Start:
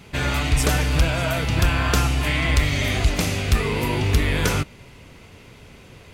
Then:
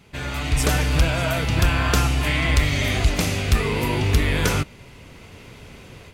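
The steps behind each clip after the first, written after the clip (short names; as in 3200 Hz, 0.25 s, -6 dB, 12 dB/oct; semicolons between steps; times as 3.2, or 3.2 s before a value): AGC gain up to 10 dB; gain -7 dB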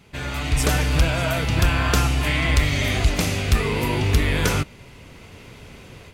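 nothing audible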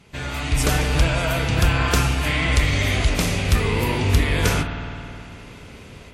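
spring tank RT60 2.8 s, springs 52 ms, chirp 45 ms, DRR 6 dB; WMA 64 kbps 48000 Hz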